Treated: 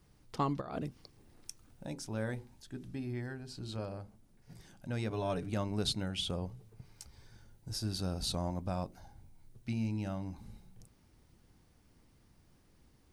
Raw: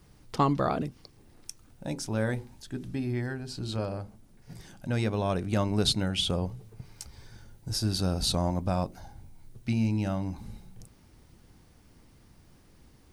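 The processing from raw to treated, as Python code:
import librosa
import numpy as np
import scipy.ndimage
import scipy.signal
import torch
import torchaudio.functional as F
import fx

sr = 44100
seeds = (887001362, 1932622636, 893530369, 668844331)

y = fx.over_compress(x, sr, threshold_db=-31.0, ratio=-0.5, at=(0.6, 1.85), fade=0.02)
y = fx.comb(y, sr, ms=6.9, depth=0.73, at=(5.1, 5.5))
y = y * librosa.db_to_amplitude(-8.0)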